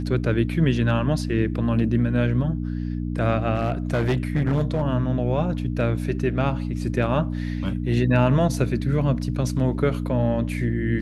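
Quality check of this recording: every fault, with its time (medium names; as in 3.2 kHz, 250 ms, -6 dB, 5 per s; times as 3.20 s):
hum 60 Hz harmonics 5 -27 dBFS
3.55–4.83 s: clipped -17 dBFS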